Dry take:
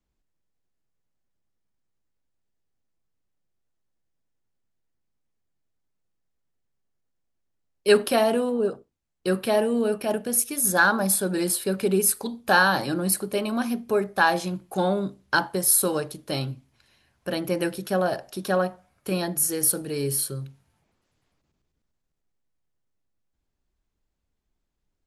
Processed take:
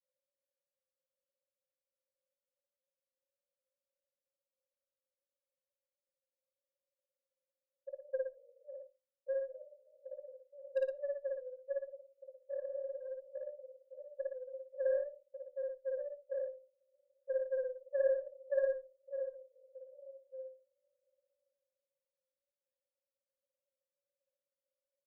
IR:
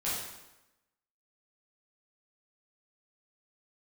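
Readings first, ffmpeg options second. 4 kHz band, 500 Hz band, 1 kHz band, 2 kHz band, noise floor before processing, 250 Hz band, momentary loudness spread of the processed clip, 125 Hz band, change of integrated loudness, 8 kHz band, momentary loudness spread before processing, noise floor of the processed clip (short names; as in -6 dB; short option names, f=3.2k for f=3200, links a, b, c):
under -40 dB, -11.5 dB, under -40 dB, -30.0 dB, -79 dBFS, under -40 dB, 20 LU, under -40 dB, -16.0 dB, under -40 dB, 11 LU, under -85 dBFS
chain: -filter_complex "[0:a]acompressor=threshold=-37dB:ratio=4,asuperpass=centerf=560:order=12:qfactor=7.6,aeval=exprs='0.0211*(cos(1*acos(clip(val(0)/0.0211,-1,1)))-cos(1*PI/2))+0.000266*(cos(2*acos(clip(val(0)/0.0211,-1,1)))-cos(2*PI/2))+0.00211*(cos(3*acos(clip(val(0)/0.0211,-1,1)))-cos(3*PI/2))':c=same,asplit=2[a][b];[1:a]atrim=start_sample=2205,atrim=end_sample=3969[c];[b][c]afir=irnorm=-1:irlink=0,volume=-24.5dB[d];[a][d]amix=inputs=2:normalize=0,afreqshift=-15,aecho=1:1:55.39|116.6:1|0.501,volume=7dB"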